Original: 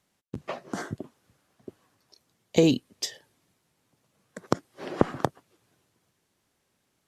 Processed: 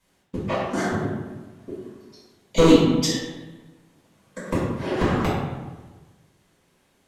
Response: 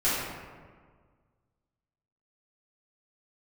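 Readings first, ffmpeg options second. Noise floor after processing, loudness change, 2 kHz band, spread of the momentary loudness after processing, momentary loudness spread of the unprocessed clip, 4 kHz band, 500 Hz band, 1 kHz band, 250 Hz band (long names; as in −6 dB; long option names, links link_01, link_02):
−65 dBFS, +6.5 dB, +8.5 dB, 23 LU, 18 LU, +7.0 dB, +7.0 dB, +6.5 dB, +7.5 dB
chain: -filter_complex "[0:a]volume=18dB,asoftclip=hard,volume=-18dB[link_01];[1:a]atrim=start_sample=2205,asetrate=61740,aresample=44100[link_02];[link_01][link_02]afir=irnorm=-1:irlink=0"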